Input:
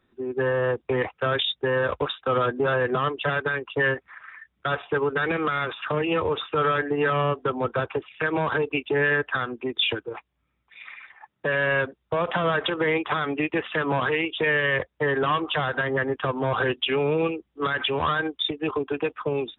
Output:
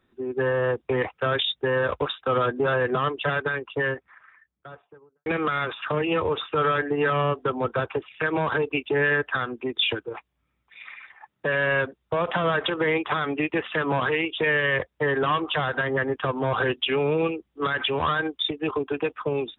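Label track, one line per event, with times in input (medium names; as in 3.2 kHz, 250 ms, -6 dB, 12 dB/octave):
3.280000	5.260000	studio fade out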